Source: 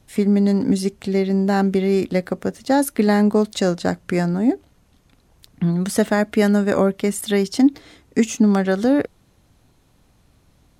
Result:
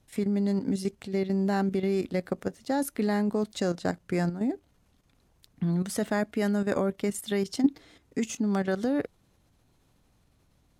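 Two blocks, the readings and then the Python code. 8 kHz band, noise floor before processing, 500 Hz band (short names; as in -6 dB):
-9.0 dB, -58 dBFS, -9.5 dB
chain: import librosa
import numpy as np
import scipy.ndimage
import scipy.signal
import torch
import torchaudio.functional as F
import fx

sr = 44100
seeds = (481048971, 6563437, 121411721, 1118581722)

y = fx.level_steps(x, sr, step_db=10)
y = y * 10.0 ** (-5.5 / 20.0)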